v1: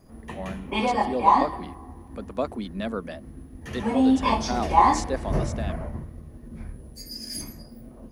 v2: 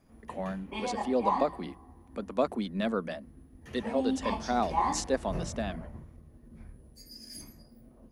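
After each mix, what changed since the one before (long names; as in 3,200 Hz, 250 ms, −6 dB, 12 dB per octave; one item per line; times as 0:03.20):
background −11.0 dB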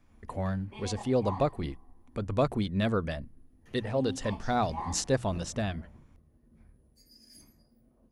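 speech: remove Chebyshev high-pass with heavy ripple 170 Hz, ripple 3 dB
background −9.5 dB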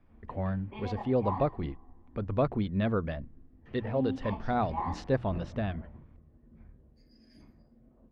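background +4.5 dB
master: add high-frequency loss of the air 340 metres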